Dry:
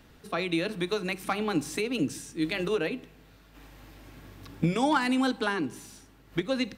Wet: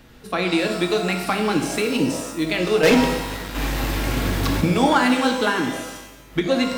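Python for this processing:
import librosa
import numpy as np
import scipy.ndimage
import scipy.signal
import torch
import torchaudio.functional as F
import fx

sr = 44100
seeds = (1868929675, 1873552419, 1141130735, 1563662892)

y = fx.leveller(x, sr, passes=5, at=(2.83, 4.61))
y = fx.rev_shimmer(y, sr, seeds[0], rt60_s=1.0, semitones=12, shimmer_db=-8, drr_db=4.0)
y = y * librosa.db_to_amplitude(6.5)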